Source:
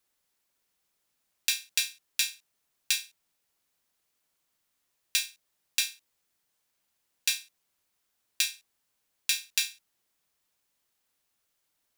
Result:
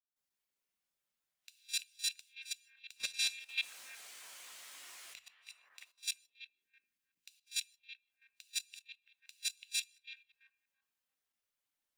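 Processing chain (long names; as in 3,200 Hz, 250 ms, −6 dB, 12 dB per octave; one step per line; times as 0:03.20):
delay that plays each chunk backwards 149 ms, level −6 dB
in parallel at −2.5 dB: brickwall limiter −13 dBFS, peak gain reduction 9 dB
0:02.96–0:05.18: on the sum: mid-hump overdrive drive 36 dB, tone 5,400 Hz, clips at −1.5 dBFS
downward compressor 2 to 1, threshold −39 dBFS, peak gain reduction 15.5 dB
gate with flip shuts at −19 dBFS, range −32 dB
on a send: echo through a band-pass that steps 337 ms, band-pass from 2,500 Hz, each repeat −0.7 octaves, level −3 dB
on the sum: reverb whose tail is shaped and stops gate 210 ms falling, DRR 11.5 dB
dynamic equaliser 8,500 Hz, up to +5 dB, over −52 dBFS, Q 0.95
soft clipping −21.5 dBFS, distortion −13 dB
0:05.89–0:07.35: parametric band 730 Hz −10 dB 1.1 octaves
output level in coarse steps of 12 dB
every bin expanded away from the loudest bin 1.5 to 1
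level +2.5 dB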